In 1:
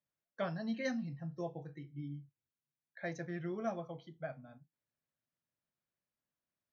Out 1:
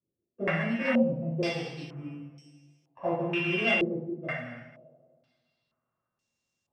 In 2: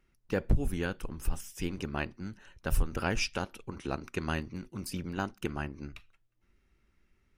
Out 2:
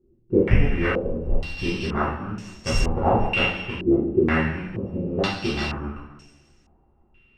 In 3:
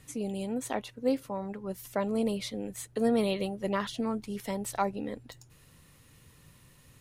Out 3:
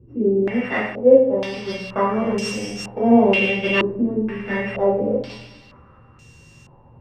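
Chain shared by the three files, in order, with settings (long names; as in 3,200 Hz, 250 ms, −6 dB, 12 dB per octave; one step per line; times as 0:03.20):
samples sorted by size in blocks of 16 samples
coupled-rooms reverb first 0.7 s, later 2.1 s, from −17 dB, DRR −8.5 dB
low-pass on a step sequencer 2.1 Hz 360–6,500 Hz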